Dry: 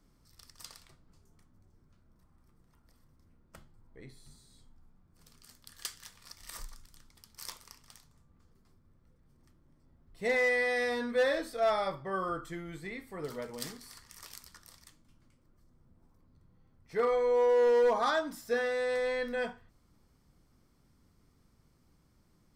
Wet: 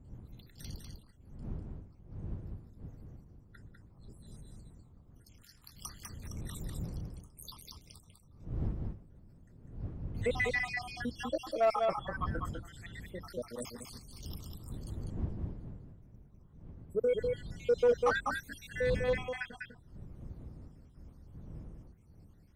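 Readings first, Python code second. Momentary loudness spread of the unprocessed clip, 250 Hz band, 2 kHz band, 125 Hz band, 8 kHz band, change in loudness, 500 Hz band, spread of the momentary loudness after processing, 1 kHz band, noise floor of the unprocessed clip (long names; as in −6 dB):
23 LU, 0.0 dB, −3.0 dB, +13.0 dB, −3.0 dB, −5.5 dB, −3.5 dB, 22 LU, −3.0 dB, −68 dBFS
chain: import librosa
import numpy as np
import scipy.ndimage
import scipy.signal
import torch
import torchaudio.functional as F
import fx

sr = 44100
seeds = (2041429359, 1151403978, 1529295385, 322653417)

p1 = fx.spec_dropout(x, sr, seeds[0], share_pct=77)
p2 = fx.dmg_wind(p1, sr, seeds[1], corner_hz=120.0, level_db=-47.0)
p3 = p2 + fx.echo_single(p2, sr, ms=199, db=-4.5, dry=0)
y = fx.cheby_harmonics(p3, sr, harmonics=(5,), levels_db=(-24,), full_scale_db=-16.5)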